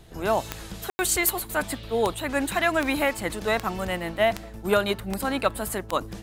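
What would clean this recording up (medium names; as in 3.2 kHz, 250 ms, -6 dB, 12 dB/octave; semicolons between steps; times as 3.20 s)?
de-click; room tone fill 0.90–0.99 s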